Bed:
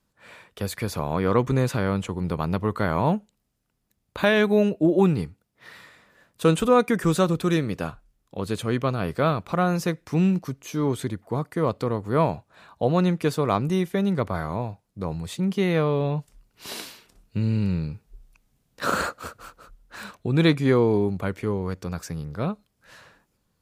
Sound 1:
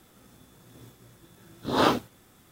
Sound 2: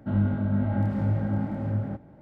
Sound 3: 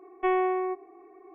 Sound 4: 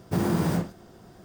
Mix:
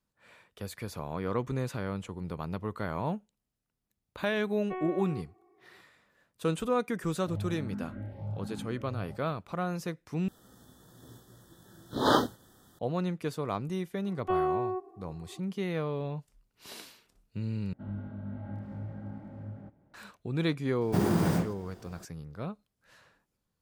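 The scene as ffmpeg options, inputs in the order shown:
-filter_complex "[3:a]asplit=2[s0][s1];[2:a]asplit=2[s2][s3];[0:a]volume=0.299[s4];[s2]asplit=2[s5][s6];[s6]afreqshift=1.2[s7];[s5][s7]amix=inputs=2:normalize=1[s8];[1:a]asuperstop=centerf=2400:order=20:qfactor=2.2[s9];[s1]asuperstop=centerf=2100:order=4:qfactor=2.1[s10];[s4]asplit=3[s11][s12][s13];[s11]atrim=end=10.284[s14];[s9]atrim=end=2.51,asetpts=PTS-STARTPTS,volume=0.794[s15];[s12]atrim=start=12.786:end=17.734[s16];[s3]atrim=end=2.21,asetpts=PTS-STARTPTS,volume=0.188[s17];[s13]atrim=start=19.936[s18];[s0]atrim=end=1.34,asetpts=PTS-STARTPTS,volume=0.224,afade=t=in:d=0.004:c=hsin,afade=t=out:st=1.336:d=0.004:c=hsin,adelay=4470[s19];[s8]atrim=end=2.21,asetpts=PTS-STARTPTS,volume=0.282,afade=t=in:d=0.004:c=hsin,afade=t=out:st=2.206:d=0.004:c=hsin,adelay=7200[s20];[s10]atrim=end=1.34,asetpts=PTS-STARTPTS,volume=0.708,afade=t=in:d=0.004:c=hsin,afade=t=out:st=1.336:d=0.004:c=hsin,adelay=14050[s21];[4:a]atrim=end=1.24,asetpts=PTS-STARTPTS,volume=0.794,afade=t=in:d=0.004:c=hsin,afade=t=out:st=1.236:d=0.004:c=hsin,adelay=20810[s22];[s14][s15]acrossfade=d=0.004:c1=hsin:c2=hsin[s23];[s23][s16]acrossfade=d=0.004:c1=hsin:c2=hsin[s24];[s24][s17]acrossfade=d=0.004:c1=hsin:c2=hsin[s25];[s25][s18]acrossfade=d=0.004:c1=hsin:c2=hsin[s26];[s26][s19][s20][s21][s22]amix=inputs=5:normalize=0"

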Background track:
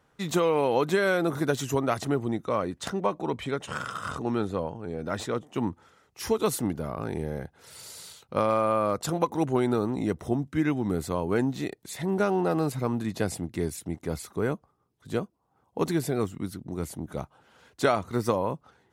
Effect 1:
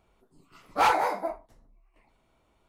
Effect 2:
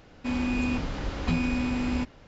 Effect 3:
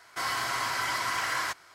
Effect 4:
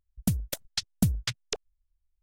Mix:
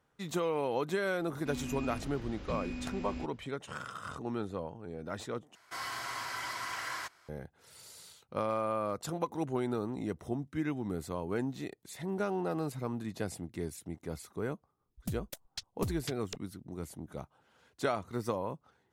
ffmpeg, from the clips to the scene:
-filter_complex "[0:a]volume=0.376[s0];[2:a]equalizer=f=930:w=1.5:g=-4.5[s1];[4:a]aeval=exprs='clip(val(0),-1,0.0841)':c=same[s2];[s0]asplit=2[s3][s4];[s3]atrim=end=5.554[s5];[3:a]atrim=end=1.74,asetpts=PTS-STARTPTS,volume=0.376[s6];[s4]atrim=start=7.286[s7];[s1]atrim=end=2.27,asetpts=PTS-STARTPTS,volume=0.237,afade=t=in:d=0.004:c=hsin,afade=t=out:st=2.266:d=0.004:c=hsin,adelay=1210[s8];[s2]atrim=end=2.22,asetpts=PTS-STARTPTS,volume=0.299,afade=t=in:d=0.004:c=hsin,afade=t=out:st=2.216:d=0.004:c=hsin,adelay=14800[s9];[s5][s6]acrossfade=d=0.004:c1=hsin:c2=hsin[s10];[s10][s7]acrossfade=d=0.004:c1=hsin:c2=hsin[s11];[s11][s8][s9]amix=inputs=3:normalize=0"

